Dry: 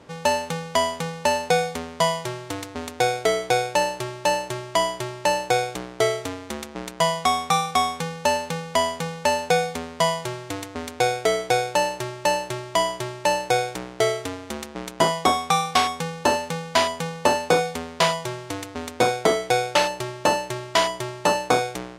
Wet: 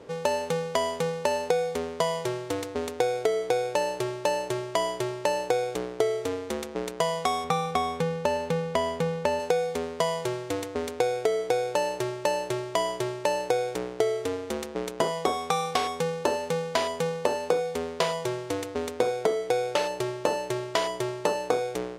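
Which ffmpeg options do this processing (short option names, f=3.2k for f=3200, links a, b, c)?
-filter_complex "[0:a]asettb=1/sr,asplit=3[a][b][c];[a]atrim=end=7.444[d];[b]atrim=start=7.44:end=9.4,asetpts=PTS-STARTPTS,afade=t=in:d=0.004:c=qsin,afade=t=out:st=1.956:d=0.004:c=qsin,bass=f=250:g=6,treble=f=4k:g=-6[e];[c]atrim=start=9.396[f];[d][e]acrossfade=d=0.004:c1=hsin:c2=qsin[g];[g][f]acrossfade=d=0.004:c1=qsin:c2=hsin,equalizer=f=450:t=o:w=0.64:g=11.5,acompressor=threshold=-19dB:ratio=6,volume=-3dB"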